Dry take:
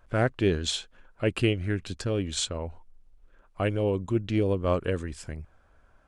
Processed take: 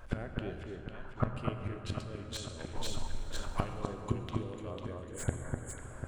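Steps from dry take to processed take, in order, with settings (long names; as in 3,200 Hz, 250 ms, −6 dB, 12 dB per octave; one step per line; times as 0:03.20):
gate with flip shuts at −24 dBFS, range −28 dB
0:00.63–0:01.31: drawn EQ curve 220 Hz 0 dB, 350 Hz −10 dB, 1,100 Hz +5 dB, 4,000 Hz −20 dB
0:04.71–0:05.76: time-frequency box erased 2,300–6,500 Hz
0:04.23–0:04.84: high-shelf EQ 4,800 Hz +10.5 dB
delay that swaps between a low-pass and a high-pass 249 ms, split 1,800 Hz, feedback 68%, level −2.5 dB
0:02.59–0:03.64: leveller curve on the samples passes 2
on a send at −6 dB: convolution reverb RT60 3.5 s, pre-delay 6 ms
on the sum: slew-rate limiting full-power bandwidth 27 Hz
level +8.5 dB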